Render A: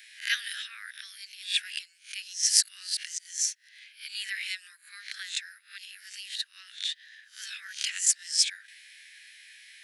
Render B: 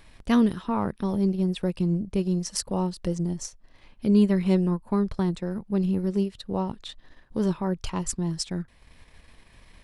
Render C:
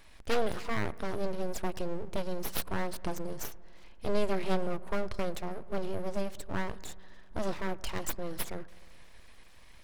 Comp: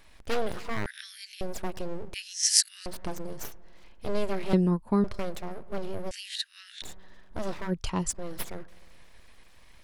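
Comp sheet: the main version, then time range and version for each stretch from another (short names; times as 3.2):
C
0.86–1.41 from A
2.14–2.86 from A
4.53–5.04 from B
6.11–6.82 from A
7.68–8.14 from B, crossfade 0.10 s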